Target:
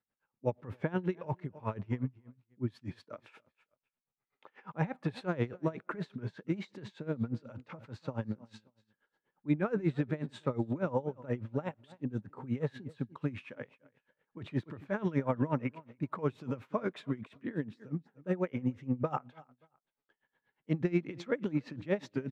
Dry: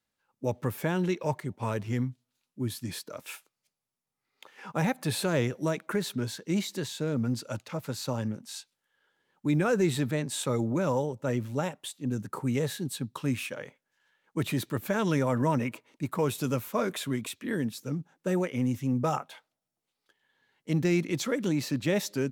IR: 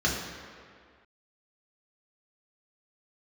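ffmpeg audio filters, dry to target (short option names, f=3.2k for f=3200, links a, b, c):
-af "lowpass=2.1k,aecho=1:1:288|576:0.0944|0.017,aeval=exprs='val(0)*pow(10,-20*(0.5-0.5*cos(2*PI*8.3*n/s))/20)':c=same"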